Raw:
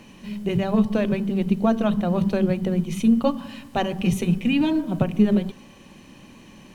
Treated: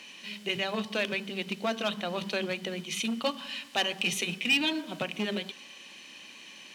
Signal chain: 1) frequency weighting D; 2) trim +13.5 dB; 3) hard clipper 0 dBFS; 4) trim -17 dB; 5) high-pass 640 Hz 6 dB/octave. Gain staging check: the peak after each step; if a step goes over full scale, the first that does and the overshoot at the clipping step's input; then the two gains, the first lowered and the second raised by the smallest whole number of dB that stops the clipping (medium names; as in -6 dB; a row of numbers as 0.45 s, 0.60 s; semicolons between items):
-6.0 dBFS, +7.5 dBFS, 0.0 dBFS, -17.0 dBFS, -14.5 dBFS; step 2, 7.5 dB; step 2 +5.5 dB, step 4 -9 dB